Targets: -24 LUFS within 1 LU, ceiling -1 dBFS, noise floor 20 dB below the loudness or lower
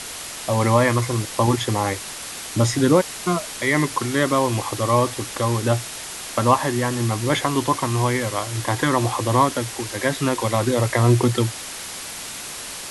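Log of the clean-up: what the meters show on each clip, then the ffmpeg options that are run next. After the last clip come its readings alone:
noise floor -34 dBFS; noise floor target -42 dBFS; loudness -21.5 LUFS; peak -2.5 dBFS; loudness target -24.0 LUFS
-> -af "afftdn=nr=8:nf=-34"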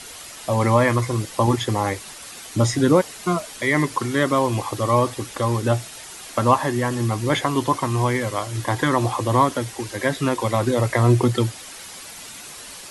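noise floor -39 dBFS; noise floor target -42 dBFS
-> -af "afftdn=nr=6:nf=-39"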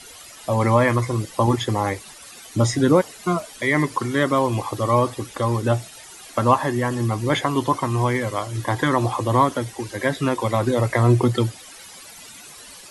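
noise floor -42 dBFS; loudness -21.5 LUFS; peak -2.5 dBFS; loudness target -24.0 LUFS
-> -af "volume=-2.5dB"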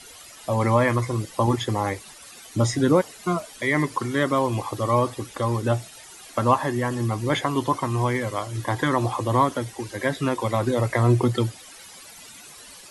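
loudness -24.0 LUFS; peak -5.0 dBFS; noise floor -45 dBFS

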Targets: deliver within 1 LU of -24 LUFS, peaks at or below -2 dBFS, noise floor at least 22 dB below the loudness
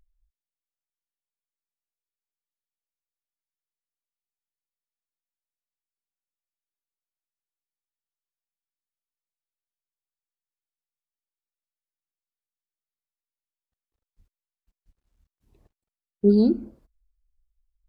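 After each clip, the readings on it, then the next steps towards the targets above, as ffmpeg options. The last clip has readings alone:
loudness -21.5 LUFS; peak -7.5 dBFS; loudness target -24.0 LUFS
-> -af "volume=-2.5dB"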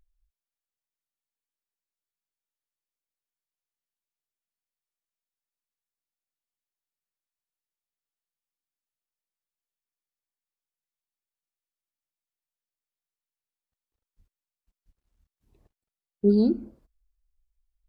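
loudness -24.0 LUFS; peak -10.0 dBFS; noise floor -94 dBFS

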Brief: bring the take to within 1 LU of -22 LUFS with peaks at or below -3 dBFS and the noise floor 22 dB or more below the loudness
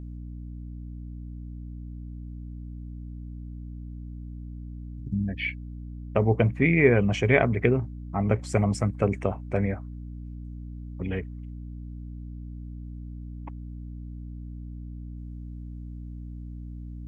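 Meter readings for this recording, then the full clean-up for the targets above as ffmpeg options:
hum 60 Hz; harmonics up to 300 Hz; hum level -36 dBFS; loudness -25.5 LUFS; peak -4.0 dBFS; loudness target -22.0 LUFS
-> -af "bandreject=f=60:t=h:w=6,bandreject=f=120:t=h:w=6,bandreject=f=180:t=h:w=6,bandreject=f=240:t=h:w=6,bandreject=f=300:t=h:w=6"
-af "volume=3.5dB,alimiter=limit=-3dB:level=0:latency=1"

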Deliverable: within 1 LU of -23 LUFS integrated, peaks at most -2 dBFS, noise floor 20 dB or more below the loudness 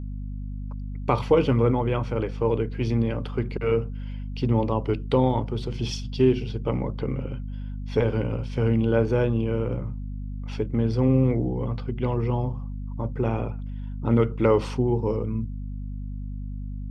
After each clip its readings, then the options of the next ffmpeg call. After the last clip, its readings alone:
hum 50 Hz; harmonics up to 250 Hz; hum level -30 dBFS; loudness -26.0 LUFS; peak -7.0 dBFS; loudness target -23.0 LUFS
-> -af "bandreject=f=50:t=h:w=4,bandreject=f=100:t=h:w=4,bandreject=f=150:t=h:w=4,bandreject=f=200:t=h:w=4,bandreject=f=250:t=h:w=4"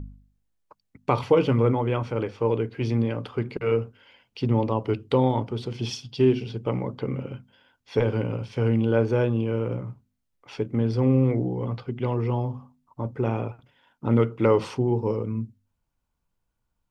hum none; loudness -25.5 LUFS; peak -7.5 dBFS; loudness target -23.0 LUFS
-> -af "volume=2.5dB"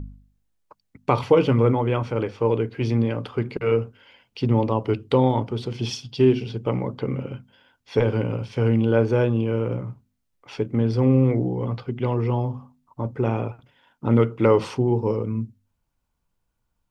loudness -23.0 LUFS; peak -5.0 dBFS; noise floor -75 dBFS

